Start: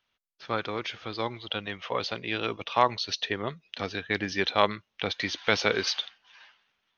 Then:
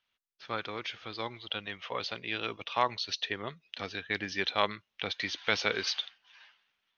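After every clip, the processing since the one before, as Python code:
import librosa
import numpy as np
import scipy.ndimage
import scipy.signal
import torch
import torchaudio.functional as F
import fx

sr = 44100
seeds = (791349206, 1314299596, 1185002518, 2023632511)

y = fx.peak_eq(x, sr, hz=2900.0, db=5.0, octaves=2.6)
y = F.gain(torch.from_numpy(y), -7.5).numpy()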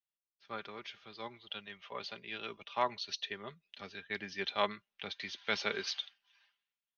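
y = x + 0.45 * np.pad(x, (int(5.0 * sr / 1000.0), 0))[:len(x)]
y = fx.band_widen(y, sr, depth_pct=40)
y = F.gain(torch.from_numpy(y), -7.5).numpy()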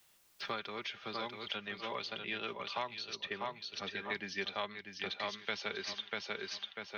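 y = fx.echo_feedback(x, sr, ms=643, feedback_pct=19, wet_db=-5.5)
y = fx.band_squash(y, sr, depth_pct=100)
y = F.gain(torch.from_numpy(y), -2.0).numpy()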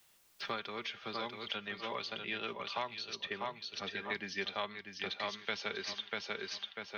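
y = fx.comb_fb(x, sr, f0_hz=230.0, decay_s=0.56, harmonics='all', damping=0.0, mix_pct=40)
y = F.gain(torch.from_numpy(y), 4.5).numpy()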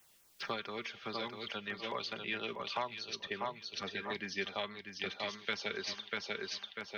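y = fx.filter_lfo_notch(x, sr, shape='saw_down', hz=4.7, low_hz=570.0, high_hz=4600.0, q=1.7)
y = F.gain(torch.from_numpy(y), 1.5).numpy()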